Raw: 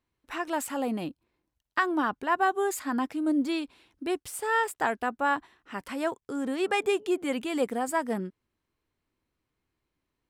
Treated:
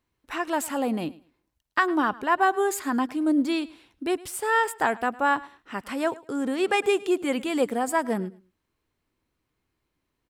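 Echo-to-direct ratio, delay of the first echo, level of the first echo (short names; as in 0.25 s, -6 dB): -20.5 dB, 0.107 s, -20.5 dB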